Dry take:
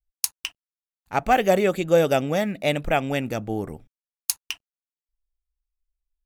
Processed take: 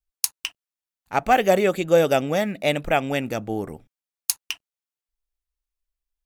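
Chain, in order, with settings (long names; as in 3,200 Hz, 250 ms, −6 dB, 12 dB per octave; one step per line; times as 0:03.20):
low-shelf EQ 140 Hz −6 dB
level +1.5 dB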